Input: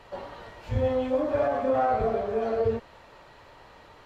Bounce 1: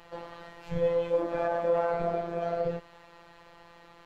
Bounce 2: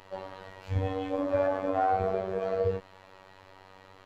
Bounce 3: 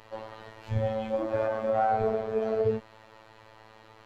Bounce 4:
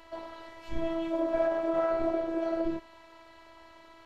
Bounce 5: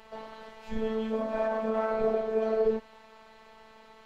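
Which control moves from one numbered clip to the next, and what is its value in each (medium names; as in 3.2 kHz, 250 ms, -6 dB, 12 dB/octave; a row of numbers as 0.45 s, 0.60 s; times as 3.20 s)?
robot voice, frequency: 170 Hz, 95 Hz, 110 Hz, 330 Hz, 220 Hz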